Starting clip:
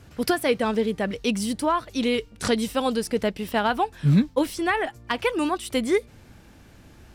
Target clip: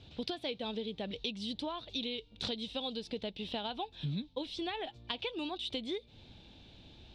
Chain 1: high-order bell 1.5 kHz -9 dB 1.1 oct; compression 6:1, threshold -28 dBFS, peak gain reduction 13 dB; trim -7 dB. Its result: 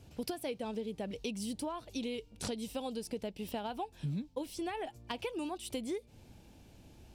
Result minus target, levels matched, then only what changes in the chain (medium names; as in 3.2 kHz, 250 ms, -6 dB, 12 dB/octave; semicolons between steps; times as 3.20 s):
4 kHz band -7.5 dB
add first: resonant low-pass 3.7 kHz, resonance Q 6.5